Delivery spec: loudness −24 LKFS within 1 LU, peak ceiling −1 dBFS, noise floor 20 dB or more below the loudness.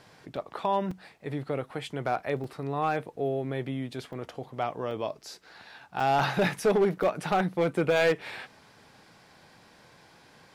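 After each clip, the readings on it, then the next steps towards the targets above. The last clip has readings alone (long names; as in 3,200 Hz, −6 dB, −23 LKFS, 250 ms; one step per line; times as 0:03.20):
share of clipped samples 0.8%; peaks flattened at −18.0 dBFS; number of dropouts 7; longest dropout 3.9 ms; integrated loudness −29.5 LKFS; sample peak −18.0 dBFS; target loudness −24.0 LKFS
→ clipped peaks rebuilt −18 dBFS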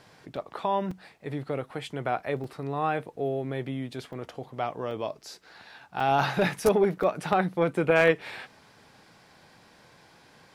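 share of clipped samples 0.0%; number of dropouts 7; longest dropout 3.9 ms
→ repair the gap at 0:00.36/0:00.91/0:02.44/0:04.13/0:04.91/0:06.00/0:07.03, 3.9 ms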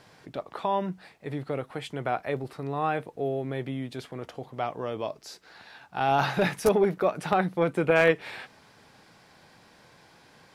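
number of dropouts 0; integrated loudness −28.0 LKFS; sample peak −9.0 dBFS; target loudness −24.0 LKFS
→ level +4 dB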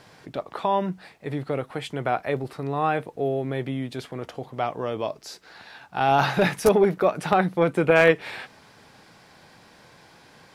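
integrated loudness −24.0 LKFS; sample peak −5.0 dBFS; background noise floor −53 dBFS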